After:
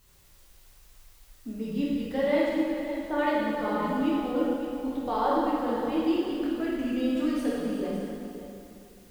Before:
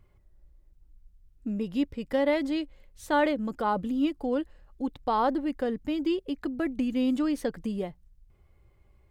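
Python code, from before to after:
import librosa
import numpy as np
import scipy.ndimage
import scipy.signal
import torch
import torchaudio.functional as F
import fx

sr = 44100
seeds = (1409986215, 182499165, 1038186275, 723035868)

p1 = fx.bessel_lowpass(x, sr, hz=1400.0, order=2, at=(2.48, 3.17), fade=0.02)
p2 = fx.quant_dither(p1, sr, seeds[0], bits=10, dither='triangular')
p3 = p2 + fx.echo_single(p2, sr, ms=560, db=-11.5, dry=0)
p4 = fx.rev_plate(p3, sr, seeds[1], rt60_s=2.5, hf_ratio=0.8, predelay_ms=0, drr_db=-7.0)
y = p4 * 10.0 ** (-7.0 / 20.0)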